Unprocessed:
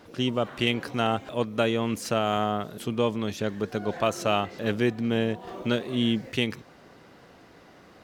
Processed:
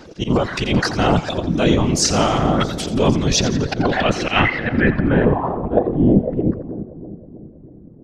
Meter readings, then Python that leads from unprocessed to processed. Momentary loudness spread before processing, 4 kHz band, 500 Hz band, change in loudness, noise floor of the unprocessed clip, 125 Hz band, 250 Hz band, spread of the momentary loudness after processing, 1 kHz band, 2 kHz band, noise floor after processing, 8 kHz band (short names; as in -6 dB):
5 LU, +7.5 dB, +7.5 dB, +9.5 dB, -53 dBFS, +13.0 dB, +10.0 dB, 7 LU, +8.0 dB, +10.5 dB, -42 dBFS, +17.5 dB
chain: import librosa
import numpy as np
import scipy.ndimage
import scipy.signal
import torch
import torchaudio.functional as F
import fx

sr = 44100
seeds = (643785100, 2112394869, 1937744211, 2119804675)

p1 = fx.spec_box(x, sr, start_s=4.25, length_s=1.0, low_hz=1300.0, high_hz=5300.0, gain_db=7)
p2 = fx.dereverb_blind(p1, sr, rt60_s=0.66)
p3 = fx.low_shelf(p2, sr, hz=310.0, db=9.0)
p4 = fx.transient(p3, sr, attack_db=-8, sustain_db=12)
p5 = fx.filter_sweep_lowpass(p4, sr, from_hz=6100.0, to_hz=220.0, start_s=3.28, end_s=7.15, q=2.1)
p6 = fx.rider(p5, sr, range_db=10, speed_s=0.5)
p7 = p5 + F.gain(torch.from_numpy(p6), 3.0).numpy()
p8 = fx.auto_swell(p7, sr, attack_ms=112.0)
p9 = fx.whisperise(p8, sr, seeds[0])
p10 = p9 + fx.echo_split(p9, sr, split_hz=740.0, low_ms=319, high_ms=86, feedback_pct=52, wet_db=-13, dry=0)
y = F.gain(torch.from_numpy(p10), -1.5).numpy()